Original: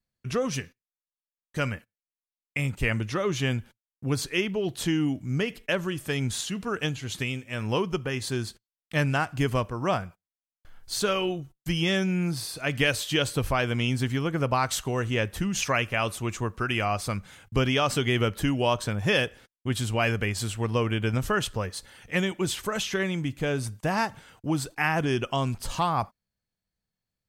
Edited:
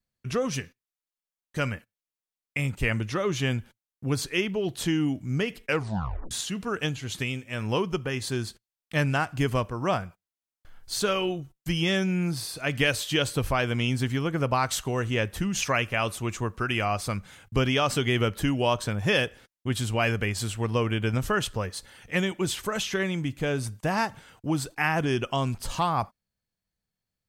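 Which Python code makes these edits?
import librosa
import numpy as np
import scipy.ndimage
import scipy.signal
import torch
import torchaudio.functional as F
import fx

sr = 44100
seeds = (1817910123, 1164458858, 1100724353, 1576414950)

y = fx.edit(x, sr, fx.tape_stop(start_s=5.65, length_s=0.66), tone=tone)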